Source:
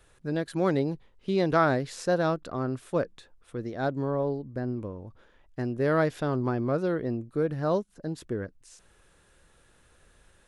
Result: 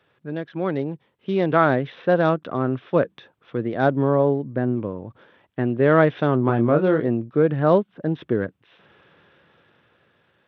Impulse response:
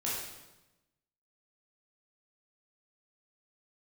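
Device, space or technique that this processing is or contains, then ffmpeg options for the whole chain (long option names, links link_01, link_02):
Bluetooth headset: -filter_complex "[0:a]asettb=1/sr,asplit=3[link_01][link_02][link_03];[link_01]atrim=end=6.464[link_04];[link_02]atrim=start=6.46:end=7.08,asetpts=PTS-STARTPTS,afade=type=in:duration=0.004:curve=qsin,afade=type=out:start_time=0.616:duration=0.004:curve=qsin,asplit=2[link_05][link_06];[link_06]adelay=26,volume=-7dB[link_07];[link_05][link_07]amix=inputs=2:normalize=0,atrim=end_sample=27342[link_08];[link_03]atrim=start=7.076[link_09];[link_04][link_08]acrossfade=duration=0.004:curve1=hsin:curve2=qsin[link_10];[link_10][link_09]acrossfade=duration=0.004:curve1=qsin:curve2=hsin,highpass=frequency=110:width=0.5412,highpass=frequency=110:width=1.3066,dynaudnorm=framelen=260:gausssize=11:maxgain=11dB,aresample=8000,aresample=44100" -ar 32000 -c:a sbc -b:a 64k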